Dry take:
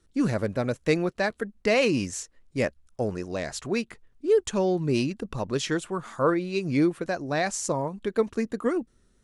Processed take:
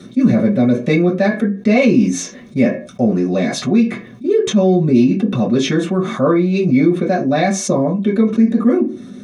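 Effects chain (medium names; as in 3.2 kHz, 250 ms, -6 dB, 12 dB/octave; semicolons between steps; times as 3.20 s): bass shelf 190 Hz -10.5 dB; reverberation RT60 0.25 s, pre-delay 3 ms, DRR -6.5 dB; level flattener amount 50%; trim -11 dB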